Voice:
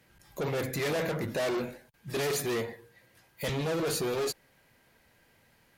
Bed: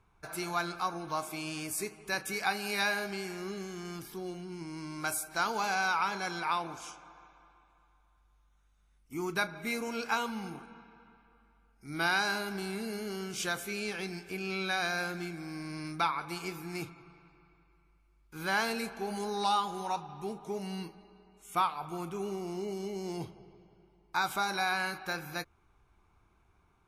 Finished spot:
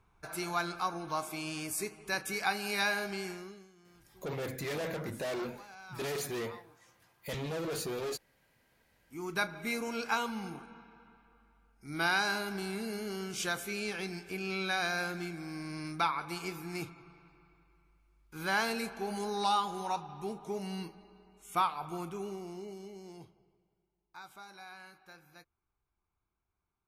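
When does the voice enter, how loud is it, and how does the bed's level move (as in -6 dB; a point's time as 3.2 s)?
3.85 s, -6.0 dB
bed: 3.3 s -0.5 dB
3.74 s -20.5 dB
8.54 s -20.5 dB
9.42 s -0.5 dB
21.95 s -0.5 dB
23.84 s -19 dB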